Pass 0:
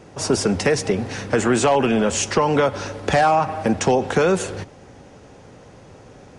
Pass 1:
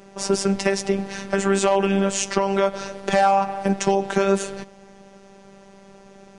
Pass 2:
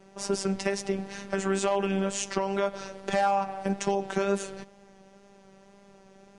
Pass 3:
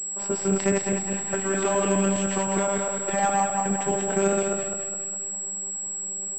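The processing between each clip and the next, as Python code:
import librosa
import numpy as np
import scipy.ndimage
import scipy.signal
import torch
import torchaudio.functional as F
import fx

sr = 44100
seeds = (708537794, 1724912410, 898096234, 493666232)

y1 = fx.robotise(x, sr, hz=196.0)
y2 = fx.wow_flutter(y1, sr, seeds[0], rate_hz=2.1, depth_cents=25.0)
y2 = y2 * 10.0 ** (-7.5 / 20.0)
y3 = fx.reverse_delay_fb(y2, sr, ms=103, feedback_pct=68, wet_db=-1.5)
y3 = fx.pwm(y3, sr, carrier_hz=7700.0)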